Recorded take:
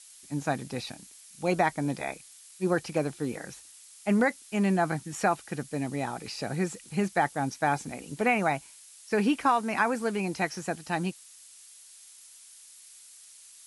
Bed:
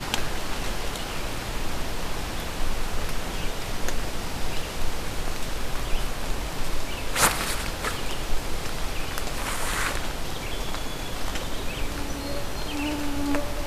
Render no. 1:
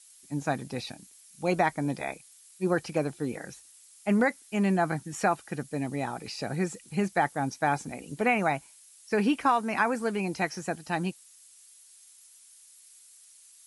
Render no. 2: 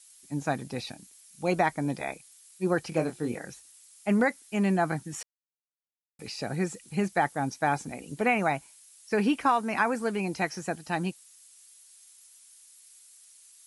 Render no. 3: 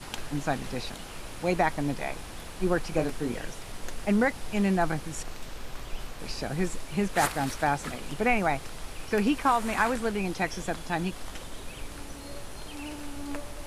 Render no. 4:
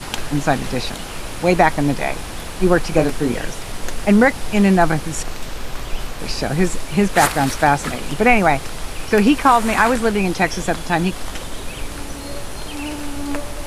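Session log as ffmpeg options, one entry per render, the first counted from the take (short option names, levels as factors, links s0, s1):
-af "afftdn=nr=6:nf=-52"
-filter_complex "[0:a]asettb=1/sr,asplit=3[s0][s1][s2];[s0]atrim=end=2.894[s3];[s1]atrim=start=2.89:end=3.39,asetpts=PTS-STARTPTS,afade=t=in:d=0.004:c=qsin,afade=t=out:st=0.496:d=0.004:c=qsin,asplit=2[s4][s5];[s5]adelay=25,volume=0.447[s6];[s4][s6]amix=inputs=2:normalize=0,atrim=end_sample=22050[s7];[s2]atrim=start=3.386[s8];[s3][s7]acrossfade=d=0.004:c1=hsin:c2=qsin[s9];[s9][s8]acrossfade=d=0.004:c1=qsin:c2=hsin,asplit=3[s10][s11][s12];[s10]atrim=end=5.23,asetpts=PTS-STARTPTS,afade=t=out:st=5.226:d=0.004:c=hsin[s13];[s11]atrim=start=5.23:end=6.19,asetpts=PTS-STARTPTS,volume=0[s14];[s12]atrim=start=6.19,asetpts=PTS-STARTPTS,afade=t=in:d=0.004:c=hsin[s15];[s13][s14][s15]concat=n=3:v=0:a=1"
-filter_complex "[1:a]volume=0.299[s0];[0:a][s0]amix=inputs=2:normalize=0"
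-af "volume=3.76,alimiter=limit=0.891:level=0:latency=1"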